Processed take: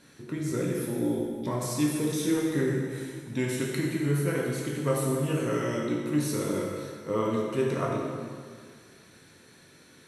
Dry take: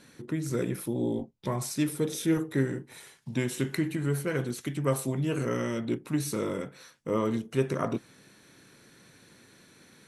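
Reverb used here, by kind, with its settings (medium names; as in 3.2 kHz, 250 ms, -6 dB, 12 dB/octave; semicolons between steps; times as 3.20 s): plate-style reverb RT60 1.9 s, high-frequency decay 0.85×, DRR -2.5 dB; trim -2.5 dB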